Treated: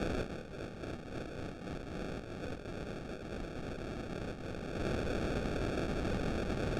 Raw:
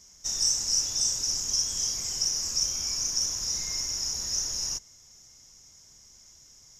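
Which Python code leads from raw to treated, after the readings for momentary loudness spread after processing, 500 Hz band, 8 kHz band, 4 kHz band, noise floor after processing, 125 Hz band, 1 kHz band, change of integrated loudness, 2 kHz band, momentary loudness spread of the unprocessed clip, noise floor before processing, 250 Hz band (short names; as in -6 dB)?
8 LU, +16.0 dB, -33.0 dB, -22.5 dB, -47 dBFS, +9.5 dB, +7.0 dB, -13.5 dB, +5.5 dB, 5 LU, -55 dBFS, +15.0 dB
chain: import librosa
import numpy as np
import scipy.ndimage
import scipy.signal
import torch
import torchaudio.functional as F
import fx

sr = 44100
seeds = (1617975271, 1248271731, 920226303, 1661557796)

y = np.minimum(x, 2.0 * 10.0 ** (-22.0 / 20.0) - x)
y = fx.bass_treble(y, sr, bass_db=8, treble_db=3)
y = fx.over_compress(y, sr, threshold_db=-43.0, ratio=-1.0)
y = fx.sample_hold(y, sr, seeds[0], rate_hz=1000.0, jitter_pct=0)
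y = fx.air_absorb(y, sr, metres=81.0)
y = y * 10.0 ** (3.5 / 20.0)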